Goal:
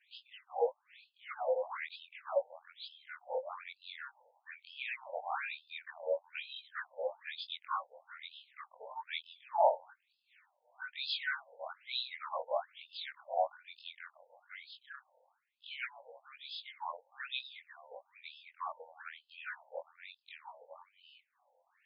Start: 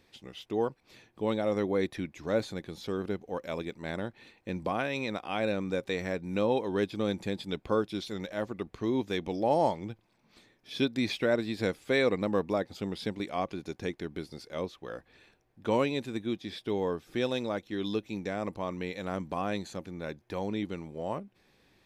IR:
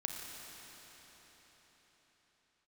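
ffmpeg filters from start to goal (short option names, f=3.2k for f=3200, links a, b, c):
-af "afftfilt=real='re':imag='-im':win_size=2048:overlap=0.75,afftfilt=real='re*between(b*sr/1024,660*pow(3700/660,0.5+0.5*sin(2*PI*1.1*pts/sr))/1.41,660*pow(3700/660,0.5+0.5*sin(2*PI*1.1*pts/sr))*1.41)':imag='im*between(b*sr/1024,660*pow(3700/660,0.5+0.5*sin(2*PI*1.1*pts/sr))/1.41,660*pow(3700/660,0.5+0.5*sin(2*PI*1.1*pts/sr))*1.41)':win_size=1024:overlap=0.75,volume=5.5dB"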